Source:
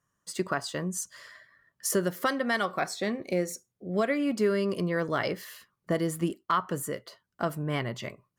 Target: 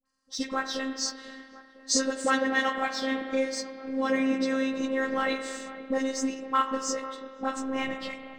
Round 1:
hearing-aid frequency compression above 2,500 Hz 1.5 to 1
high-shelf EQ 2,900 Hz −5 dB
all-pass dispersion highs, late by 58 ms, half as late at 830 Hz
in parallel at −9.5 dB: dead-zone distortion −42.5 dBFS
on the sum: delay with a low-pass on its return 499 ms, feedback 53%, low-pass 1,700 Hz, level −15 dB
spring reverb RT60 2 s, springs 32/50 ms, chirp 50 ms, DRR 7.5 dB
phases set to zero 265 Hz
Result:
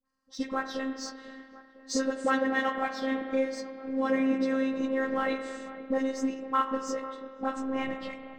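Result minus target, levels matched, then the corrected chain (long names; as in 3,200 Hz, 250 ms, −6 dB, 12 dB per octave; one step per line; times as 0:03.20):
8,000 Hz band −9.0 dB
hearing-aid frequency compression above 2,500 Hz 1.5 to 1
high-shelf EQ 2,900 Hz +7 dB
all-pass dispersion highs, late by 58 ms, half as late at 830 Hz
in parallel at −9.5 dB: dead-zone distortion −42.5 dBFS
on the sum: delay with a low-pass on its return 499 ms, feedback 53%, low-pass 1,700 Hz, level −15 dB
spring reverb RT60 2 s, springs 32/50 ms, chirp 50 ms, DRR 7.5 dB
phases set to zero 265 Hz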